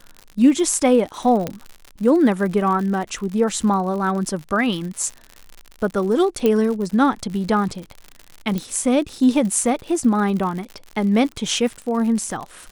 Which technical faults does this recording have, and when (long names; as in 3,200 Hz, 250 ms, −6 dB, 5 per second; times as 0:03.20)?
surface crackle 82 per second −28 dBFS
0:01.47: click −10 dBFS
0:06.46: click −7 dBFS
0:08.58: click